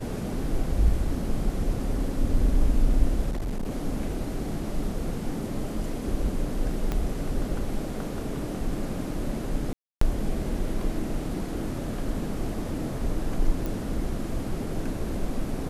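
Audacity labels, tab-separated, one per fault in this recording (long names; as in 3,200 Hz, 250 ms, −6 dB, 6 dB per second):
3.300000	3.710000	clipping −26 dBFS
6.920000	6.920000	click −15 dBFS
9.730000	10.010000	drop-out 284 ms
13.660000	13.660000	click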